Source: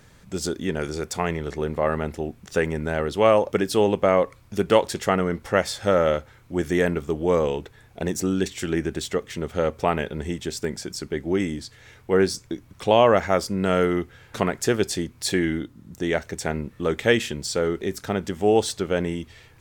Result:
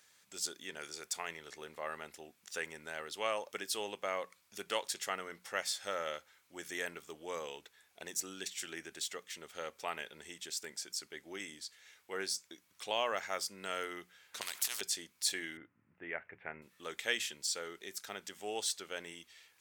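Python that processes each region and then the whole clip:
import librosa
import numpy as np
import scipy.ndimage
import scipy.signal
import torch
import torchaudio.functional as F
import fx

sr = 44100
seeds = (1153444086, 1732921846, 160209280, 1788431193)

y = fx.chain(x, sr, fx.transient(attack_db=-11, sustain_db=-3),
    fx.spectral_comp(ratio=4.0), at=(14.41, 14.81))
y = fx.chain(y, sr, fx.steep_lowpass(hz=2500.0, slope=48),
    fx.peak_eq(hz=110.0, db=14.0, octaves=0.44), at=(15.57, 16.62))
y = fx.lowpass(y, sr, hz=3800.0, slope=6)
y = np.diff(y, prepend=0.0)
y = fx.hum_notches(y, sr, base_hz=60, count=3)
y = y * librosa.db_to_amplitude(1.5)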